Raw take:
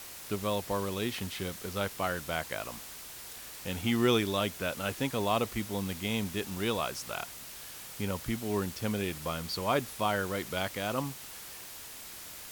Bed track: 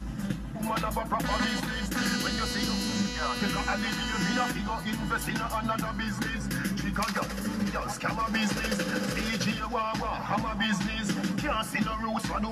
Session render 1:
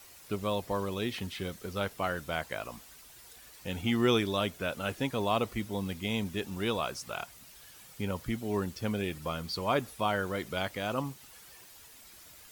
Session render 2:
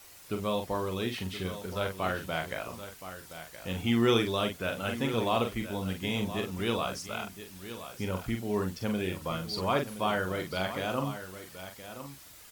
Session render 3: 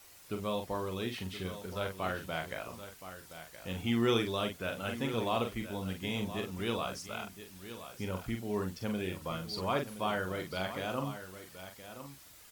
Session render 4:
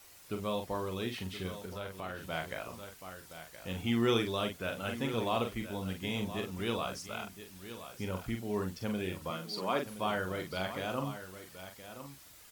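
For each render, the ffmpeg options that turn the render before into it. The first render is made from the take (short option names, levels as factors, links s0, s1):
-af "afftdn=nr=10:nf=-46"
-filter_complex "[0:a]asplit=2[s0][s1];[s1]adelay=43,volume=0.501[s2];[s0][s2]amix=inputs=2:normalize=0,aecho=1:1:1021:0.251"
-af "volume=0.631"
-filter_complex "[0:a]asettb=1/sr,asplit=3[s0][s1][s2];[s0]atrim=end=1.654[s3];[s1]atrim=start=1.65:end=2.3,asetpts=PTS-STARTPTS,afade=t=in:d=0.004:c=qsin,afade=t=out:st=0.646:d=0.004:c=qsin,acompressor=threshold=0.01:ratio=2:attack=3.2:release=140:knee=1:detection=peak[s4];[s2]atrim=start=2.296[s5];[s3][s4]acrossfade=d=0.004:c1=hsin:c2=qsin[s6];[s6][s5]acrossfade=d=0.004:c1=qsin:c2=hsin,asettb=1/sr,asplit=3[s7][s8][s9];[s7]atrim=end=9.304[s10];[s8]atrim=start=9.3:end=9.86,asetpts=PTS-STARTPTS,afade=t=in:d=0.004:c=qsin,afade=t=out:st=0.556:d=0.004:c=qsin,highpass=f=170:w=0.5412,highpass=f=170:w=1.3066[s11];[s9]atrim=start=9.856[s12];[s10][s11]acrossfade=d=0.004:c1=hsin:c2=qsin[s13];[s13][s12]acrossfade=d=0.004:c1=qsin:c2=hsin"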